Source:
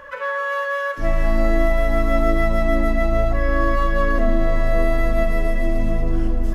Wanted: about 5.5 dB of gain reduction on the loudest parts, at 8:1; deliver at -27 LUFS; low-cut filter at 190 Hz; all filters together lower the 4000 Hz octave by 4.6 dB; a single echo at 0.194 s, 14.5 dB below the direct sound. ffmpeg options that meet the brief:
-af "highpass=190,equalizer=f=4k:t=o:g=-6,acompressor=threshold=-23dB:ratio=8,aecho=1:1:194:0.188"

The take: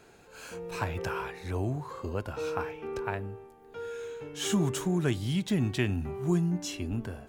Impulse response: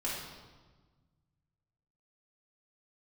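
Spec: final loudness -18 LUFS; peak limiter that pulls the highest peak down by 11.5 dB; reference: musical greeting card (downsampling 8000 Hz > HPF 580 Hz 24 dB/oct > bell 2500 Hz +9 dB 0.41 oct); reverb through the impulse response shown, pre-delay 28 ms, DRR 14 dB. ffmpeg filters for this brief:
-filter_complex "[0:a]alimiter=level_in=1dB:limit=-24dB:level=0:latency=1,volume=-1dB,asplit=2[a][b];[1:a]atrim=start_sample=2205,adelay=28[c];[b][c]afir=irnorm=-1:irlink=0,volume=-18.5dB[d];[a][d]amix=inputs=2:normalize=0,aresample=8000,aresample=44100,highpass=f=580:w=0.5412,highpass=f=580:w=1.3066,equalizer=f=2.5k:t=o:w=0.41:g=9,volume=22dB"

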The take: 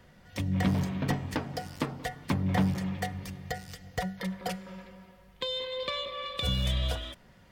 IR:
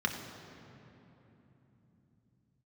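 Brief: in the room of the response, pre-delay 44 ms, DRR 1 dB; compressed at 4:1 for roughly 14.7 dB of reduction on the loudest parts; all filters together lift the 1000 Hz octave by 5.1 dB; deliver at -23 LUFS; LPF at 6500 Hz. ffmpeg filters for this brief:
-filter_complex "[0:a]lowpass=6.5k,equalizer=f=1k:t=o:g=7,acompressor=threshold=-40dB:ratio=4,asplit=2[a][b];[1:a]atrim=start_sample=2205,adelay=44[c];[b][c]afir=irnorm=-1:irlink=0,volume=-8.5dB[d];[a][d]amix=inputs=2:normalize=0,volume=15.5dB"

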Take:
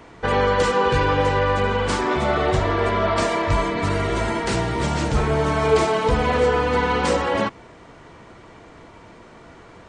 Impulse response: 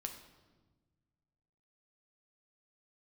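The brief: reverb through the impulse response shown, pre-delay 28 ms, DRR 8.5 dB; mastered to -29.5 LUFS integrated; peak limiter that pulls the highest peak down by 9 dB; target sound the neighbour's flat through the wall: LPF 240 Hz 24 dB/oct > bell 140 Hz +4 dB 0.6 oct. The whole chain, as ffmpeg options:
-filter_complex "[0:a]alimiter=limit=-16.5dB:level=0:latency=1,asplit=2[a][b];[1:a]atrim=start_sample=2205,adelay=28[c];[b][c]afir=irnorm=-1:irlink=0,volume=-6.5dB[d];[a][d]amix=inputs=2:normalize=0,lowpass=f=240:w=0.5412,lowpass=f=240:w=1.3066,equalizer=f=140:t=o:w=0.6:g=4,volume=-0.5dB"

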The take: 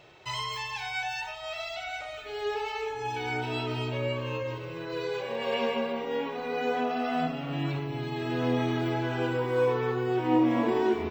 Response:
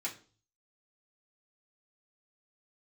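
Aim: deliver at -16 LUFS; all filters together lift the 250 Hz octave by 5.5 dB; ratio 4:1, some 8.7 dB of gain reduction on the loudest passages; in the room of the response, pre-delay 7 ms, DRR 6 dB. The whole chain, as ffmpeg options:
-filter_complex "[0:a]equalizer=f=250:t=o:g=7,acompressor=threshold=-25dB:ratio=4,asplit=2[a][b];[1:a]atrim=start_sample=2205,adelay=7[c];[b][c]afir=irnorm=-1:irlink=0,volume=-8dB[d];[a][d]amix=inputs=2:normalize=0,volume=13dB"

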